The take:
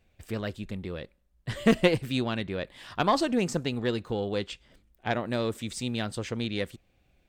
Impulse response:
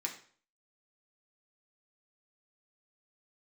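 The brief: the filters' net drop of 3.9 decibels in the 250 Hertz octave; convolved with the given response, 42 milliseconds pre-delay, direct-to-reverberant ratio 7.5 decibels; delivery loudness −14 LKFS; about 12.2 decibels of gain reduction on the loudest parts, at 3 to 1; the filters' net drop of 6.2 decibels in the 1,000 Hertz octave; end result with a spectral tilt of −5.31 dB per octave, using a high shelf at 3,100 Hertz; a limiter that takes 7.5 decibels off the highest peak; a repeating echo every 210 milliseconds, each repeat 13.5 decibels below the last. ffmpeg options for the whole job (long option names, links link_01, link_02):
-filter_complex "[0:a]equalizer=frequency=250:width_type=o:gain=-4.5,equalizer=frequency=1000:width_type=o:gain=-7.5,highshelf=frequency=3100:gain=-5,acompressor=threshold=-36dB:ratio=3,alimiter=level_in=5dB:limit=-24dB:level=0:latency=1,volume=-5dB,aecho=1:1:210|420:0.211|0.0444,asplit=2[link_01][link_02];[1:a]atrim=start_sample=2205,adelay=42[link_03];[link_02][link_03]afir=irnorm=-1:irlink=0,volume=-8.5dB[link_04];[link_01][link_04]amix=inputs=2:normalize=0,volume=27dB"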